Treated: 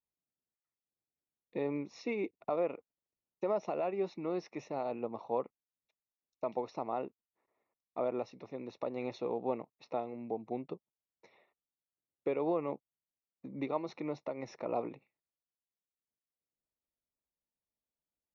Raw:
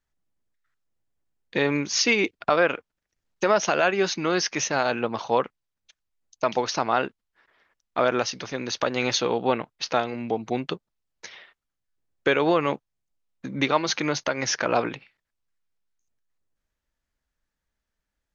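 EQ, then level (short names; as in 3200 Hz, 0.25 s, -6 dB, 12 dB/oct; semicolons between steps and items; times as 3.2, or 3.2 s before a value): running mean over 28 samples; HPF 250 Hz 6 dB/oct; -8.0 dB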